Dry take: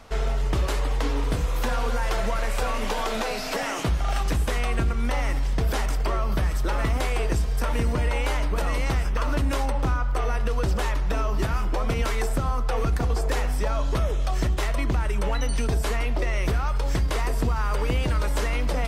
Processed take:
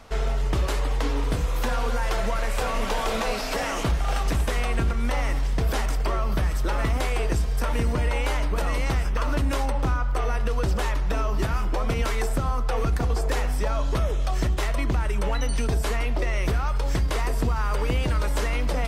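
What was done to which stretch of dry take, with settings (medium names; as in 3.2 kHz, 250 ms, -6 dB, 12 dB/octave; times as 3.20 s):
2.07–2.91 s: echo throw 500 ms, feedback 75%, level -7 dB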